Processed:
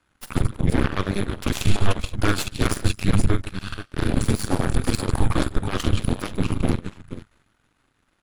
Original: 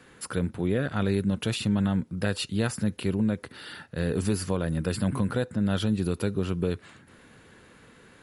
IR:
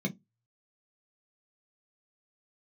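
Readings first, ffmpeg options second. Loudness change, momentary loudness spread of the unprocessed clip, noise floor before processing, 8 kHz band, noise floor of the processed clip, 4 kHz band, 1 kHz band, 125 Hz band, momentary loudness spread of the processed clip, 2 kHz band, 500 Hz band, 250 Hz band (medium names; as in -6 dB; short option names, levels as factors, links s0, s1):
+3.5 dB, 5 LU, -55 dBFS, +6.0 dB, -68 dBFS, +5.0 dB, +8.5 dB, +5.0 dB, 8 LU, +5.5 dB, +0.5 dB, +1.0 dB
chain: -af "afreqshift=-200,aecho=1:1:45|149|220|224|479:0.422|0.251|0.106|0.1|0.355,aeval=exprs='0.224*(cos(1*acos(clip(val(0)/0.224,-1,1)))-cos(1*PI/2))+0.0562*(cos(6*acos(clip(val(0)/0.224,-1,1)))-cos(6*PI/2))+0.0282*(cos(7*acos(clip(val(0)/0.224,-1,1)))-cos(7*PI/2))':c=same,volume=1.5"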